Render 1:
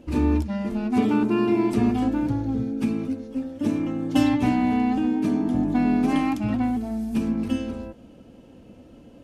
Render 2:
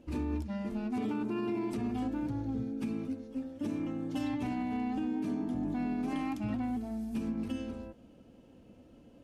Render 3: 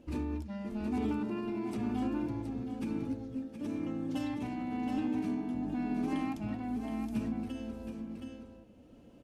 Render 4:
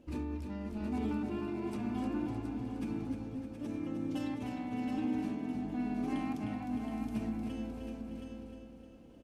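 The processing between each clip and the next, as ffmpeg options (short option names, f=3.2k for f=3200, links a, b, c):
-af "alimiter=limit=-17dB:level=0:latency=1:release=74,volume=-9dB"
-af "aecho=1:1:721:0.447,tremolo=f=0.99:d=0.34"
-af "aecho=1:1:307|614|921|1228|1535|1842|2149:0.447|0.246|0.135|0.0743|0.0409|0.0225|0.0124,volume=-2.5dB"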